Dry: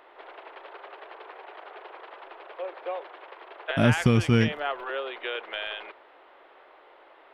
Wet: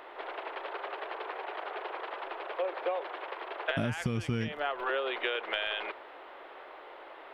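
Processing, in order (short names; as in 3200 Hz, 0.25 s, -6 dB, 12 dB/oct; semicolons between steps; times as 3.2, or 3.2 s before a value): compressor 16:1, threshold -33 dBFS, peak gain reduction 19 dB; gain +5.5 dB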